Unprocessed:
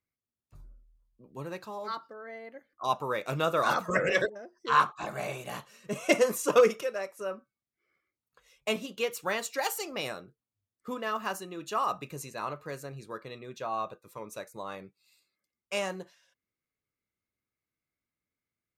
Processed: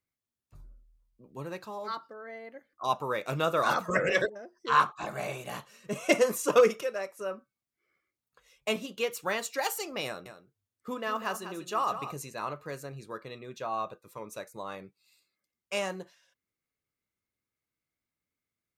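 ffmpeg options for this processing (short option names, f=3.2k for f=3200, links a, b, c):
-filter_complex "[0:a]asettb=1/sr,asplit=3[a][b][c];[a]atrim=end=10.064[d];[b]atrim=start=10.06:end=12.17,asetpts=PTS-STARTPTS,afade=t=in:d=0.004:c=qsin,afade=t=out:st=2.106:d=0.004:c=qsin,aecho=1:1:195:0.299,atrim=end_sample=93051[e];[c]atrim=start=12.166[f];[d][e]acrossfade=d=0.004:c1=hsin:c2=qsin[g];[g][f]acrossfade=d=0.004:c1=qsin:c2=hsin"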